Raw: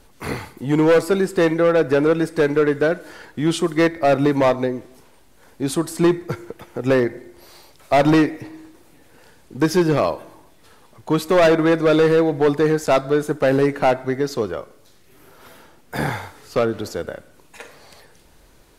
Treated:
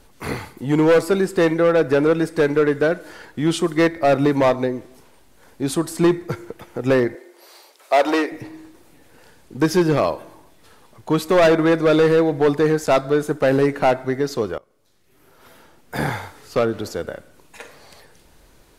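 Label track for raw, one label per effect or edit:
7.150000	8.320000	high-pass 370 Hz 24 dB/octave
14.580000	15.990000	fade in, from -21 dB

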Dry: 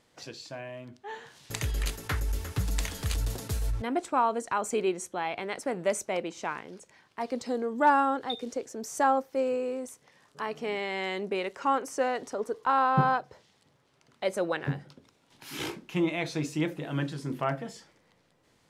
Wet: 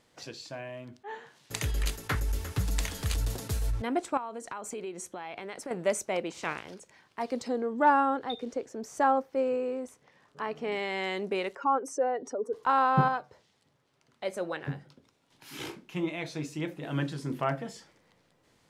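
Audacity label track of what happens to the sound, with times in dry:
1.030000	2.150000	three bands expanded up and down depth 40%
4.170000	5.710000	compression 4:1, threshold -36 dBFS
6.290000	6.730000	spectral peaks clipped ceiling under each frame's peak by 14 dB
7.480000	10.720000	treble shelf 4.8 kHz -11.5 dB
11.550000	12.530000	spectral contrast enhancement exponent 1.7
13.080000	16.830000	flange 1.3 Hz, delay 6.3 ms, depth 2.3 ms, regen -81%

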